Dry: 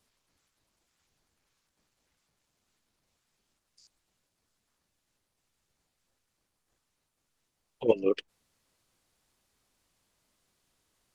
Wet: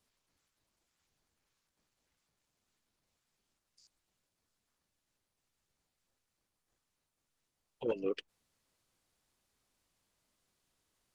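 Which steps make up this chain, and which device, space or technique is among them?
soft clipper into limiter (soft clipping −13.5 dBFS, distortion −16 dB; brickwall limiter −19.5 dBFS, peak gain reduction 5.5 dB)
level −5 dB

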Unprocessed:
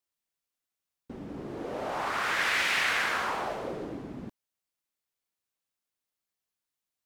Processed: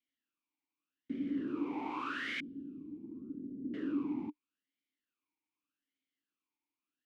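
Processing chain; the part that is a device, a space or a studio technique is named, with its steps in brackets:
0:02.40–0:03.74: inverse Chebyshev low-pass filter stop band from 760 Hz, stop band 50 dB
talk box (tube saturation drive 37 dB, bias 0.35; formant filter swept between two vowels i-u 0.83 Hz)
level +14 dB

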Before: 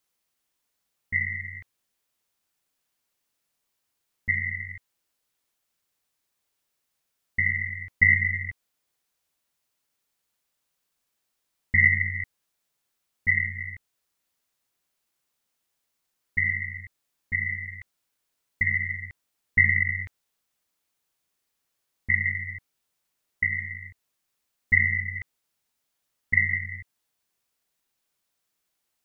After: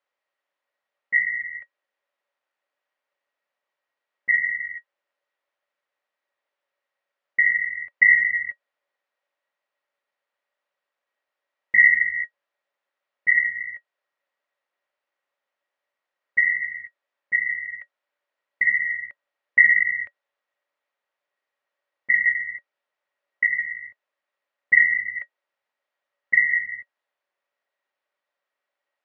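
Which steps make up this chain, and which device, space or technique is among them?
tin-can telephone (band-pass filter 550–2,100 Hz; hollow resonant body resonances 570/1,900 Hz, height 13 dB, ringing for 85 ms)
level +3 dB

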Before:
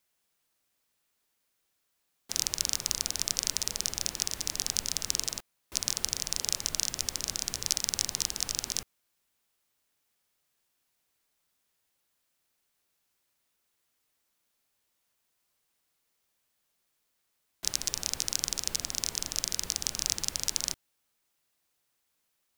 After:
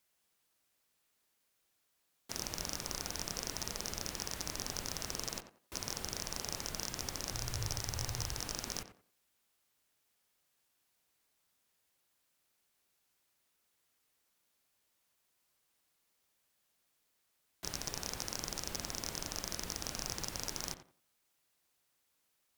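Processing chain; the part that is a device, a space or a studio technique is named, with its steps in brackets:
rockabilly slapback (tube saturation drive 24 dB, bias 0.45; tape delay 89 ms, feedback 28%, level −8 dB, low-pass 1,800 Hz)
0:07.33–0:08.40: low shelf with overshoot 150 Hz +7 dB, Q 3
level +1 dB

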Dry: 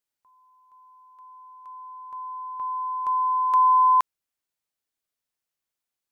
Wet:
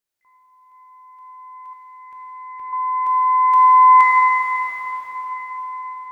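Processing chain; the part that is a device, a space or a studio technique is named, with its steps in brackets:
shimmer-style reverb (pitch-shifted copies added +12 semitones −10 dB; convolution reverb RT60 5.4 s, pre-delay 9 ms, DRR −6 dB)
0:01.73–0:02.73: flat-topped bell 860 Hz −8 dB 1.3 octaves

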